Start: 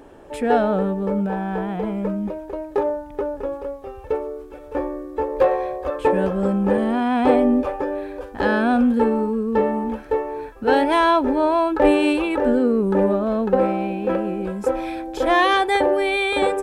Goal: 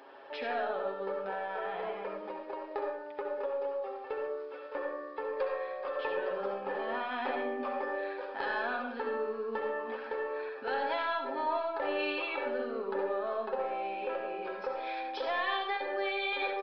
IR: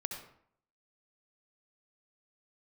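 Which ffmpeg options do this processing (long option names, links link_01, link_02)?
-filter_complex "[0:a]highpass=710,aecho=1:1:7.4:0.6,acompressor=threshold=-33dB:ratio=3,aeval=exprs='0.126*(cos(1*acos(clip(val(0)/0.126,-1,1)))-cos(1*PI/2))+0.0112*(cos(2*acos(clip(val(0)/0.126,-1,1)))-cos(2*PI/2))+0.001*(cos(4*acos(clip(val(0)/0.126,-1,1)))-cos(4*PI/2))':channel_layout=same[link_01];[1:a]atrim=start_sample=2205[link_02];[link_01][link_02]afir=irnorm=-1:irlink=0,aresample=11025,aresample=44100,volume=-1.5dB"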